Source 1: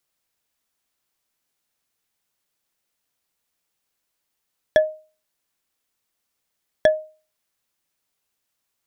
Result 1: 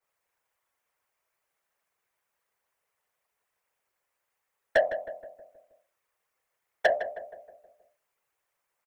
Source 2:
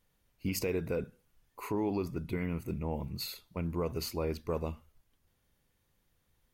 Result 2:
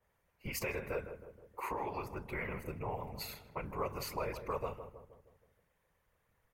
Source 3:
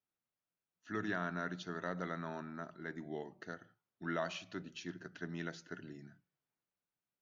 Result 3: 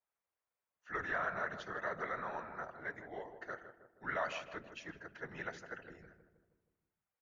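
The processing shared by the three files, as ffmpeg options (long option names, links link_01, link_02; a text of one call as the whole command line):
ffmpeg -i in.wav -filter_complex "[0:a]equalizer=frequency=125:width_type=o:width=1:gain=4,equalizer=frequency=250:width_type=o:width=1:gain=-12,equalizer=frequency=500:width_type=o:width=1:gain=10,equalizer=frequency=1000:width_type=o:width=1:gain=8,equalizer=frequency=2000:width_type=o:width=1:gain=8,equalizer=frequency=4000:width_type=o:width=1:gain=-5,acrossover=split=120|680|2900[link_01][link_02][link_03][link_04];[link_02]acompressor=threshold=-37dB:ratio=6[link_05];[link_01][link_05][link_03][link_04]amix=inputs=4:normalize=0,afftfilt=real='hypot(re,im)*cos(2*PI*random(0))':imag='hypot(re,im)*sin(2*PI*random(1))':win_size=512:overlap=0.75,asoftclip=type=tanh:threshold=-13dB,asplit=2[link_06][link_07];[link_07]adelay=158,lowpass=frequency=1200:poles=1,volume=-9dB,asplit=2[link_08][link_09];[link_09]adelay=158,lowpass=frequency=1200:poles=1,volume=0.55,asplit=2[link_10][link_11];[link_11]adelay=158,lowpass=frequency=1200:poles=1,volume=0.55,asplit=2[link_12][link_13];[link_13]adelay=158,lowpass=frequency=1200:poles=1,volume=0.55,asplit=2[link_14][link_15];[link_15]adelay=158,lowpass=frequency=1200:poles=1,volume=0.55,asplit=2[link_16][link_17];[link_17]adelay=158,lowpass=frequency=1200:poles=1,volume=0.55[link_18];[link_06][link_08][link_10][link_12][link_14][link_16][link_18]amix=inputs=7:normalize=0,adynamicequalizer=threshold=0.00447:dfrequency=2000:dqfactor=0.7:tfrequency=2000:tqfactor=0.7:attack=5:release=100:ratio=0.375:range=2:mode=boostabove:tftype=highshelf" out.wav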